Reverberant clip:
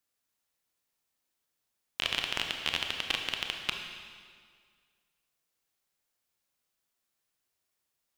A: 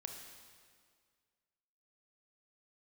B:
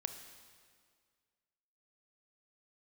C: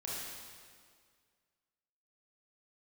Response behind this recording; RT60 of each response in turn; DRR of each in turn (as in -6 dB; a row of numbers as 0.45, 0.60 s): A; 1.9, 1.9, 1.9 s; 3.0, 7.5, -6.5 dB